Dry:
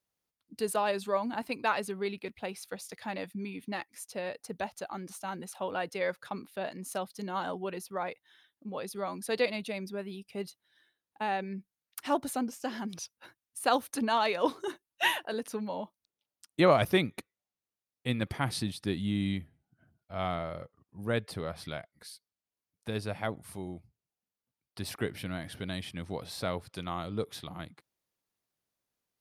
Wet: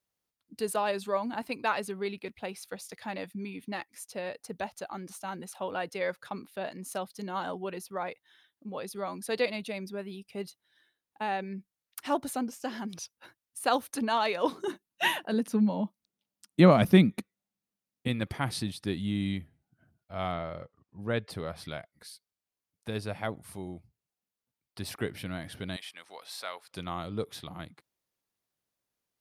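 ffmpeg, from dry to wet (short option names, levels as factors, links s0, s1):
-filter_complex "[0:a]asettb=1/sr,asplit=3[s0][s1][s2];[s0]atrim=end=14.524[s3];[s1]atrim=start=14.52:end=18.08,asetpts=PTS-STARTPTS,afade=t=in:d=0.004:c=qsin,afade=t=out:st=3.556:d=0.004:c=qsin,equalizer=f=200:t=o:w=0.88:g=14[s4];[s2]atrim=start=18.076[s5];[s3][s4]acrossfade=d=0.004:c1=hsin:c2=qsin[s6];[s6][s5]acrossfade=d=0.004:c1=qsin:c2=hsin,asettb=1/sr,asplit=3[s7][s8][s9];[s7]atrim=end=20.324[s10];[s8]atrim=start=20.32:end=21.3,asetpts=PTS-STARTPTS,afade=t=in:d=0.004:c=qsin,afade=t=out:st=0.976:d=0.004:c=qsin,lowpass=5800[s11];[s9]atrim=start=21.296[s12];[s10][s11]acrossfade=d=0.004:c1=hsin:c2=qsin[s13];[s13][s12]acrossfade=d=0.004:c1=qsin:c2=hsin,asettb=1/sr,asplit=3[s14][s15][s16];[s14]atrim=end=25.764[s17];[s15]atrim=start=25.76:end=26.71,asetpts=PTS-STARTPTS,afade=t=in:d=0.004:c=qsin,afade=t=out:st=0.946:d=0.004:c=qsin,highpass=920[s18];[s16]atrim=start=26.706[s19];[s17][s18]acrossfade=d=0.004:c1=hsin:c2=qsin[s20];[s20][s19]acrossfade=d=0.004:c1=qsin:c2=hsin"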